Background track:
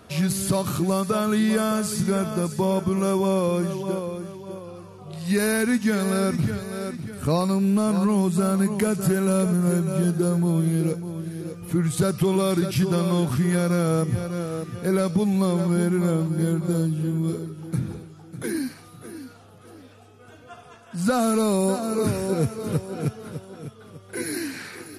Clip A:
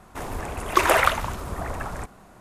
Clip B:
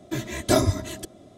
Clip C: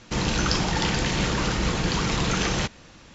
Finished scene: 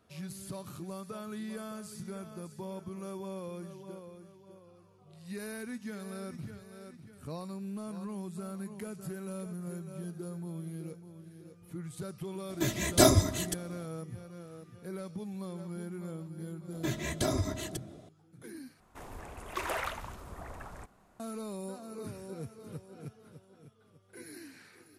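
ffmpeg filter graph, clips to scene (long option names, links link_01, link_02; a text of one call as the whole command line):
ffmpeg -i bed.wav -i cue0.wav -i cue1.wav -filter_complex "[2:a]asplit=2[link_01][link_02];[0:a]volume=-19dB[link_03];[link_01]highshelf=frequency=5300:gain=7.5[link_04];[link_02]acompressor=threshold=-22dB:ratio=6:attack=3.2:release=140:knee=1:detection=peak[link_05];[1:a]asoftclip=type=tanh:threshold=-12dB[link_06];[link_03]asplit=2[link_07][link_08];[link_07]atrim=end=18.804[link_09];[link_06]atrim=end=2.4,asetpts=PTS-STARTPTS,volume=-14dB[link_10];[link_08]atrim=start=21.196[link_11];[link_04]atrim=end=1.37,asetpts=PTS-STARTPTS,volume=-2dB,afade=type=in:duration=0.004:curve=hsin,afade=type=out:start_time=1.366:duration=0.004:curve=hsin,adelay=12490[link_12];[link_05]atrim=end=1.37,asetpts=PTS-STARTPTS,volume=-3.5dB,afade=type=in:duration=0.004:curve=hsin,afade=type=out:start_time=1.366:duration=0.004:curve=hsin,adelay=16720[link_13];[link_09][link_10]acrossfade=duration=0.004:curve1=hsin:curve2=hsin[link_14];[link_14][link_11]acrossfade=duration=0.004:curve1=hsin:curve2=hsin[link_15];[link_15][link_12][link_13]amix=inputs=3:normalize=0" out.wav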